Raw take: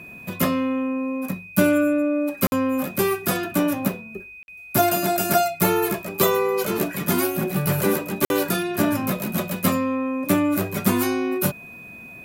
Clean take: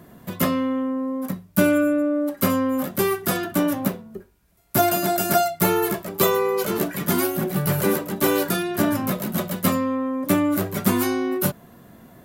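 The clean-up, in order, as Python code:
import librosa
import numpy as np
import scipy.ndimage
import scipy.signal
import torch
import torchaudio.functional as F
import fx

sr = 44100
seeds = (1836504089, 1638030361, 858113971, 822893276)

y = fx.notch(x, sr, hz=2500.0, q=30.0)
y = fx.fix_interpolate(y, sr, at_s=(2.47, 4.43, 8.25), length_ms=51.0)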